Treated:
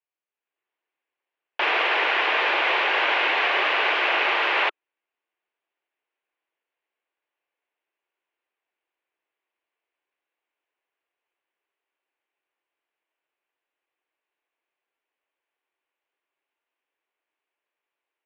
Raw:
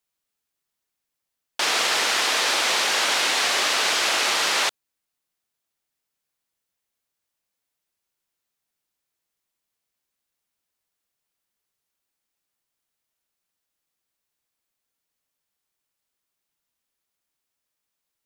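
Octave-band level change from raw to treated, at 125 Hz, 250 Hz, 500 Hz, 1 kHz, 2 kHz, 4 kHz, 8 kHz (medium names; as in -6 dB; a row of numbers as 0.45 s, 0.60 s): no reading, 0.0 dB, +2.5 dB, +2.5 dB, +2.5 dB, -5.5 dB, under -25 dB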